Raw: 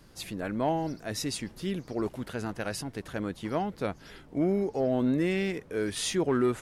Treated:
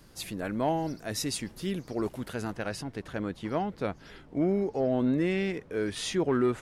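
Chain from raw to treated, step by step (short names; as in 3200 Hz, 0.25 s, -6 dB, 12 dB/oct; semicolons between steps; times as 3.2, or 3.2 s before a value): high shelf 7800 Hz +4.5 dB, from 2.55 s -10 dB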